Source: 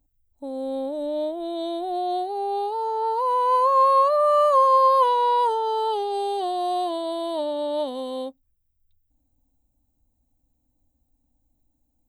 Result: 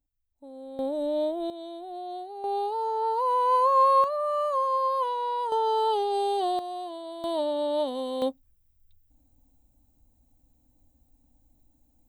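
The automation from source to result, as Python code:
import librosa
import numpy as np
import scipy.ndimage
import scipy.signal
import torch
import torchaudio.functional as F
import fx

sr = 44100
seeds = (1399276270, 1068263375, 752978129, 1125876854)

y = fx.gain(x, sr, db=fx.steps((0.0, -12.5), (0.79, -0.5), (1.5, -11.0), (2.44, -2.5), (4.04, -9.0), (5.52, -0.5), (6.59, -10.5), (7.24, -1.0), (8.22, 6.0)))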